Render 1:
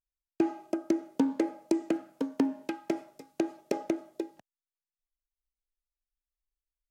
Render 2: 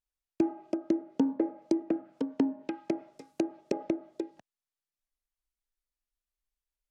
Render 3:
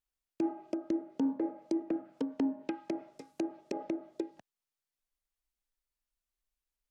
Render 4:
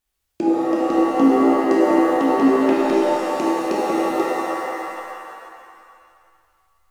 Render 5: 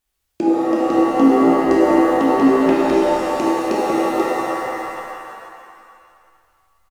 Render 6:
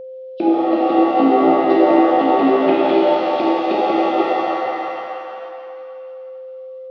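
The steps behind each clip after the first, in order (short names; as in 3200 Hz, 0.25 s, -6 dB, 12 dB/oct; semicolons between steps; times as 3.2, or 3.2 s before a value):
treble ducked by the level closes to 1200 Hz, closed at -28 dBFS; dynamic EQ 1300 Hz, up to -4 dB, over -51 dBFS, Q 0.99
limiter -22.5 dBFS, peak gain reduction 9 dB
shimmer reverb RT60 2.2 s, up +7 st, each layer -2 dB, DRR -5.5 dB; gain +9 dB
frequency-shifting echo 0.229 s, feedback 47%, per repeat -100 Hz, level -22.5 dB; gain +2 dB
nonlinear frequency compression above 2700 Hz 1.5:1; speaker cabinet 240–3900 Hz, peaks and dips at 250 Hz -6 dB, 460 Hz -5 dB, 720 Hz +5 dB, 1000 Hz -8 dB, 1700 Hz -9 dB, 3300 Hz +5 dB; whine 520 Hz -34 dBFS; gain +3.5 dB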